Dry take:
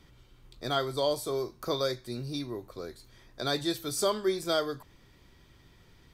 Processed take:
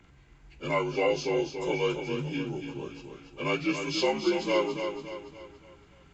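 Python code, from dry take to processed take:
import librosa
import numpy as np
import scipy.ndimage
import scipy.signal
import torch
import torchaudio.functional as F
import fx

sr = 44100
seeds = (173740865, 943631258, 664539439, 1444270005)

y = fx.partial_stretch(x, sr, pct=83)
y = fx.echo_feedback(y, sr, ms=284, feedback_pct=44, wet_db=-7.0)
y = y * 10.0 ** (2.5 / 20.0)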